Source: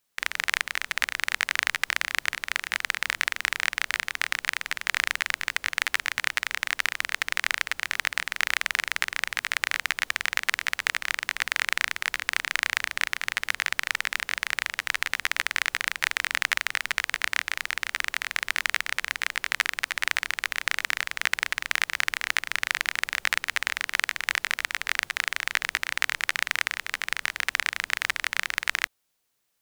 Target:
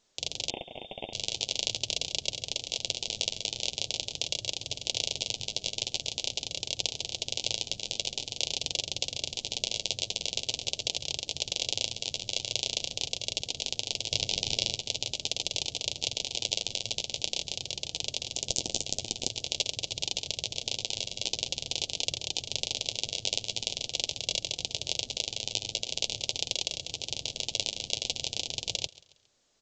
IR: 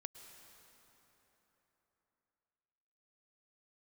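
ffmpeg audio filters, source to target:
-filter_complex "[0:a]aecho=1:1:1.8:0.8,asplit=3[link_01][link_02][link_03];[link_01]afade=type=out:start_time=14.1:duration=0.02[link_04];[link_02]acontrast=84,afade=type=in:start_time=14.1:duration=0.02,afade=type=out:start_time=14.74:duration=0.02[link_05];[link_03]afade=type=in:start_time=14.74:duration=0.02[link_06];[link_04][link_05][link_06]amix=inputs=3:normalize=0,asettb=1/sr,asplit=3[link_07][link_08][link_09];[link_07]atrim=end=18.344[link_10];[link_08]atrim=start=18.34:end=19.28,asetpts=PTS-STARTPTS,afade=type=in:duration=0.004:curve=qsin,afade=type=out:start_time=0.936:duration=0.004:curve=qsin,aeval=exprs='(mod(2.82*val(0)+1,2)-1)/2.82':channel_layout=same[link_11];[link_09]atrim=start=19.276[link_12];[link_10][link_11]acrossfade=duration=0.004:curve1=hsin:curve2=qsin[link_13];[link_13][link_12]acrossfade=duration=0.004:curve1=qsin:curve2=hsin,flanger=delay=4:depth=5.9:regen=-42:speed=0.45:shape=triangular,aeval=exprs='val(0)*sin(2*PI*110*n/s)':channel_layout=same,aecho=1:1:137|274|411:0.0891|0.0365|0.015,asettb=1/sr,asplit=3[link_14][link_15][link_16];[link_14]atrim=end=0.504[link_17];[link_15]atrim=start=0.5:end=1.13,asetpts=PTS-STARTPTS,afade=type=in:duration=0.004:curve=qsin,afade=type=out:start_time=0.626:duration=0.004:curve=qsin,lowpass=frequency=3100:width_type=q:width=0.5098,lowpass=frequency=3100:width_type=q:width=0.6013,lowpass=frequency=3100:width_type=q:width=0.9,lowpass=frequency=3100:width_type=q:width=2.563,afreqshift=-3700[link_18];[link_16]atrim=start=1.126[link_19];[link_17][link_18]acrossfade=duration=0.004:curve1=hsin:curve2=qsin[link_20];[link_20][link_19]acrossfade=duration=0.004:curve1=qsin:curve2=hsin,asuperstop=centerf=1500:order=8:qfactor=0.6,volume=8.5dB" -ar 16000 -c:a pcm_alaw

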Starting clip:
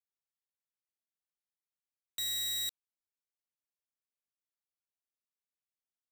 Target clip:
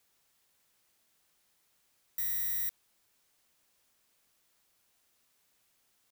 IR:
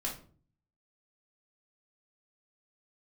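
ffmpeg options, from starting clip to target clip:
-af "aeval=exprs='0.0335*sin(PI/2*8.91*val(0)/0.0335)':channel_layout=same,atempo=1"

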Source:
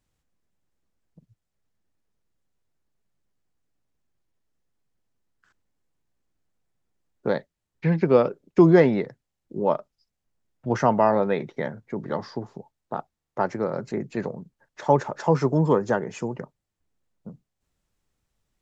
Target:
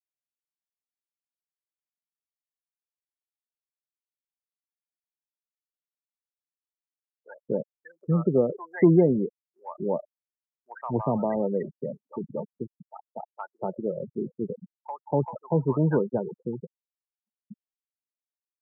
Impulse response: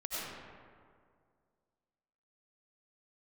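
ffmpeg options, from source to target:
-filter_complex "[0:a]afftfilt=real='re*gte(hypot(re,im),0.141)':imag='im*gte(hypot(re,im),0.141)':win_size=1024:overlap=0.75,acrossover=split=420[link_01][link_02];[link_02]acompressor=threshold=-26dB:ratio=2[link_03];[link_01][link_03]amix=inputs=2:normalize=0,acrossover=split=930[link_04][link_05];[link_04]adelay=240[link_06];[link_06][link_05]amix=inputs=2:normalize=0,aexciter=amount=6.8:drive=9.3:freq=5300,volume=-1.5dB"

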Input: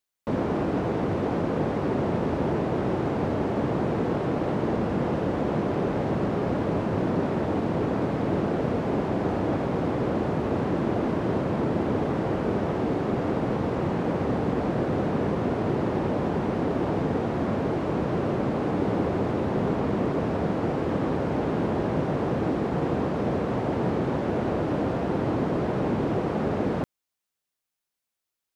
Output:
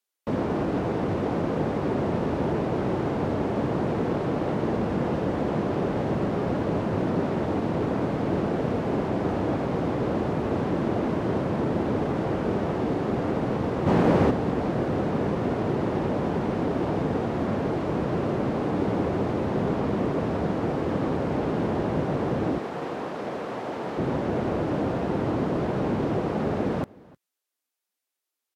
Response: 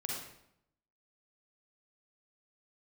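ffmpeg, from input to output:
-filter_complex "[0:a]asplit=3[link_01][link_02][link_03];[link_01]afade=type=out:start_time=13.86:duration=0.02[link_04];[link_02]acontrast=79,afade=type=in:start_time=13.86:duration=0.02,afade=type=out:start_time=14.29:duration=0.02[link_05];[link_03]afade=type=in:start_time=14.29:duration=0.02[link_06];[link_04][link_05][link_06]amix=inputs=3:normalize=0,asettb=1/sr,asplit=3[link_07][link_08][link_09];[link_07]atrim=end=22.584[link_10];[link_08]atrim=start=22.58:end=23.98,asetpts=PTS-STARTPTS,afade=type=in:duration=0.004:curve=qsin,afade=type=out:start_time=1.396:duration=0.004:curve=qsin,highpass=frequency=620:poles=1[link_11];[link_09]atrim=start=23.976[link_12];[link_10][link_11]acrossfade=duration=0.004:curve1=hsin:curve2=qsin[link_13];[link_13][link_12]acrossfade=duration=0.004:curve1=qsin:curve2=hsin,aecho=1:1:308:0.0668" -ar 44100 -c:a libvorbis -b:a 64k

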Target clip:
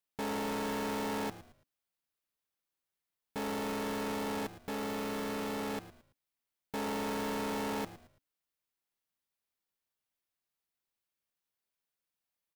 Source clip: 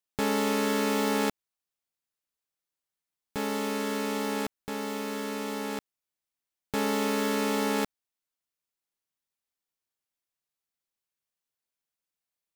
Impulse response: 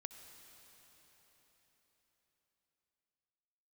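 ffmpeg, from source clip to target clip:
-filter_complex "[0:a]equalizer=frequency=7200:width_type=o:width=1:gain=-4,asoftclip=type=hard:threshold=-34dB,asplit=4[link_01][link_02][link_03][link_04];[link_02]adelay=111,afreqshift=-99,volume=-15dB[link_05];[link_03]adelay=222,afreqshift=-198,volume=-24.6dB[link_06];[link_04]adelay=333,afreqshift=-297,volume=-34.3dB[link_07];[link_01][link_05][link_06][link_07]amix=inputs=4:normalize=0"

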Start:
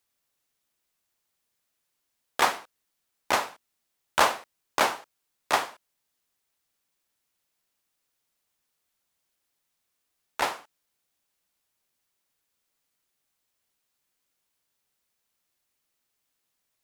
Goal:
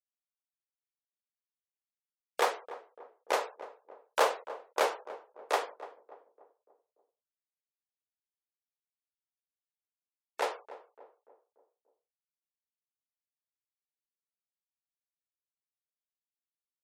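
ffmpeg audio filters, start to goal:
ffmpeg -i in.wav -filter_complex "[0:a]highpass=frequency=460:width_type=q:width=4.9,afftfilt=real='re*gte(hypot(re,im),0.00708)':imag='im*gte(hypot(re,im),0.00708)':win_size=1024:overlap=0.75,asplit=2[link_01][link_02];[link_02]adelay=291,lowpass=frequency=960:poles=1,volume=-13.5dB,asplit=2[link_03][link_04];[link_04]adelay=291,lowpass=frequency=960:poles=1,volume=0.53,asplit=2[link_05][link_06];[link_06]adelay=291,lowpass=frequency=960:poles=1,volume=0.53,asplit=2[link_07][link_08];[link_08]adelay=291,lowpass=frequency=960:poles=1,volume=0.53,asplit=2[link_09][link_10];[link_10]adelay=291,lowpass=frequency=960:poles=1,volume=0.53[link_11];[link_01][link_03][link_05][link_07][link_09][link_11]amix=inputs=6:normalize=0,volume=-8.5dB" out.wav

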